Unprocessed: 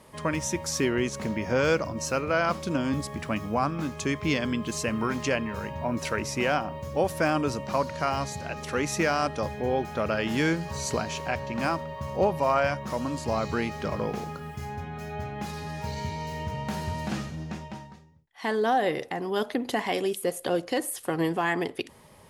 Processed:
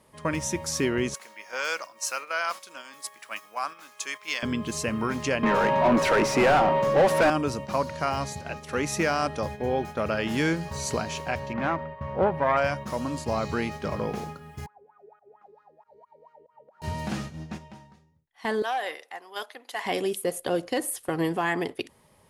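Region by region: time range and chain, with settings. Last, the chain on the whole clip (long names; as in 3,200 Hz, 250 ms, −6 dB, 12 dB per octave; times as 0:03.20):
0:01.14–0:04.43: high-pass filter 1,000 Hz + high-shelf EQ 8,600 Hz +8.5 dB
0:05.43–0:07.30: high-pass filter 130 Hz 24 dB per octave + mid-hump overdrive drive 29 dB, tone 1,100 Hz, clips at −10 dBFS
0:11.53–0:12.57: phase distortion by the signal itself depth 0.14 ms + drawn EQ curve 290 Hz 0 dB, 2,000 Hz +2 dB, 7,600 Hz −23 dB
0:14.66–0:16.82: volume swells 104 ms + parametric band 470 Hz +5 dB 1.3 octaves + LFO wah 4.4 Hz 380–1,400 Hz, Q 13
0:18.62–0:19.85: high-pass filter 840 Hz + saturating transformer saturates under 940 Hz
whole clip: noise gate −35 dBFS, range −7 dB; parametric band 9,800 Hz +3 dB 0.33 octaves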